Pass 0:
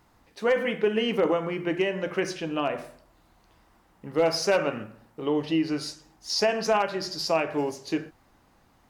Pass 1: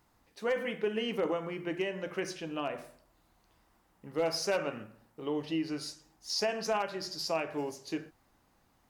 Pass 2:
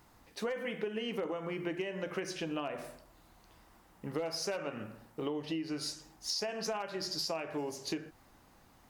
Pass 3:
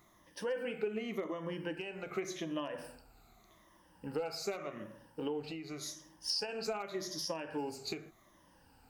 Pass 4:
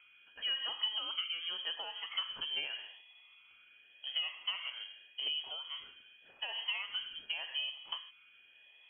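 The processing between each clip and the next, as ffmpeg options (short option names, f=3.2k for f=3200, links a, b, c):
-af "highshelf=f=6.2k:g=6,volume=-8dB"
-af "acompressor=threshold=-40dB:ratio=12,volume=7dB"
-af "afftfilt=real='re*pow(10,13/40*sin(2*PI*(1.2*log(max(b,1)*sr/1024/100)/log(2)-(-0.86)*(pts-256)/sr)))':imag='im*pow(10,13/40*sin(2*PI*(1.2*log(max(b,1)*sr/1024/100)/log(2)-(-0.86)*(pts-256)/sr)))':win_size=1024:overlap=0.75,volume=-4dB"
-af "aeval=exprs='val(0)+0.000794*sin(2*PI*930*n/s)':c=same,lowpass=f=2.9k:t=q:w=0.5098,lowpass=f=2.9k:t=q:w=0.6013,lowpass=f=2.9k:t=q:w=0.9,lowpass=f=2.9k:t=q:w=2.563,afreqshift=-3400"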